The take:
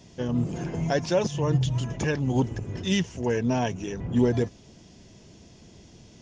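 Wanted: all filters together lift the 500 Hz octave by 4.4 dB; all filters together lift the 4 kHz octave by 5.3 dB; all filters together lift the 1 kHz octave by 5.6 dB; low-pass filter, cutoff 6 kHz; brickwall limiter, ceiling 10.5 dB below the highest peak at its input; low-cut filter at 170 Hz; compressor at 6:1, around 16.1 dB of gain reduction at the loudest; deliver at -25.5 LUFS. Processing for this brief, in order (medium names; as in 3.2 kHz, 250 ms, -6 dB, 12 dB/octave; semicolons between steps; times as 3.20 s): high-pass 170 Hz; low-pass 6 kHz; peaking EQ 500 Hz +4 dB; peaking EQ 1 kHz +5.5 dB; peaking EQ 4 kHz +7.5 dB; compression 6:1, threshold -32 dBFS; trim +15 dB; peak limiter -15.5 dBFS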